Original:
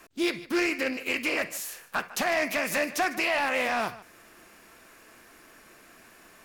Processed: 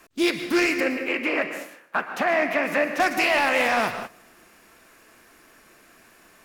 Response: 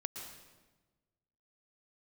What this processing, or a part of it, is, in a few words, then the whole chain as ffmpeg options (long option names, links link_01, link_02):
keyed gated reverb: -filter_complex "[0:a]asettb=1/sr,asplit=3[link_01][link_02][link_03];[link_01]atrim=end=0.804[link_04];[link_02]atrim=start=0.8:end=3,asetpts=PTS-STARTPTS,afade=type=in:duration=0.004:curve=qsin,afade=type=out:start_time=2.196:duration=0.004:curve=qsin,acrossover=split=150 2700:gain=0.0631 1 0.141[link_05][link_06][link_07];[link_05][link_06][link_07]amix=inputs=3:normalize=0[link_08];[link_03]atrim=start=2.996[link_09];[link_04][link_08]acrossfade=duration=0.004:curve1=hsin:curve2=qsin[link_10];[link_10][link_09]acrossfade=duration=0.004:curve1=qsin:curve2=hsin,asplit=3[link_11][link_12][link_13];[1:a]atrim=start_sample=2205[link_14];[link_12][link_14]afir=irnorm=-1:irlink=0[link_15];[link_13]apad=whole_len=284110[link_16];[link_15][link_16]sidechaingate=range=-17dB:threshold=-47dB:ratio=16:detection=peak,volume=3.5dB[link_17];[link_11][link_17]amix=inputs=2:normalize=0,volume=-1.5dB"